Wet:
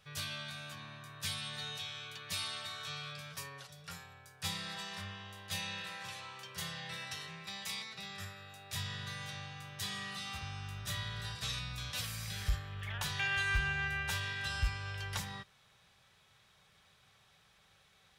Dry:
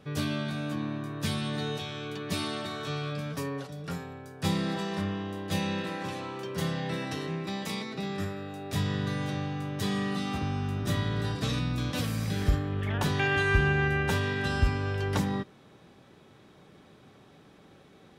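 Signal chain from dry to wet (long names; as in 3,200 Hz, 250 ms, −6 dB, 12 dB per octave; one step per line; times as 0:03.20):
guitar amp tone stack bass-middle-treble 10-0-10
hard clipping −23.5 dBFS, distortion −28 dB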